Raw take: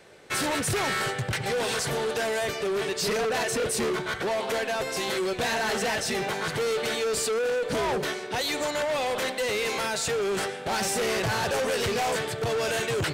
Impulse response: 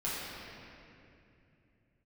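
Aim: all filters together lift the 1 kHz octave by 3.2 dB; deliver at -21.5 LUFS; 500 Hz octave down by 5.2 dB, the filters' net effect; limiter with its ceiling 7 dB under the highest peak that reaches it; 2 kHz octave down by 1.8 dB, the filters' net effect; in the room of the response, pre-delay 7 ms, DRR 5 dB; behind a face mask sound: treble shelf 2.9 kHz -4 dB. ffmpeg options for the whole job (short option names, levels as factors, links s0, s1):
-filter_complex "[0:a]equalizer=f=500:t=o:g=-8.5,equalizer=f=1000:t=o:g=8.5,equalizer=f=2000:t=o:g=-3.5,alimiter=level_in=1.06:limit=0.0631:level=0:latency=1,volume=0.944,asplit=2[s0][s1];[1:a]atrim=start_sample=2205,adelay=7[s2];[s1][s2]afir=irnorm=-1:irlink=0,volume=0.266[s3];[s0][s3]amix=inputs=2:normalize=0,highshelf=f=2900:g=-4,volume=2.99"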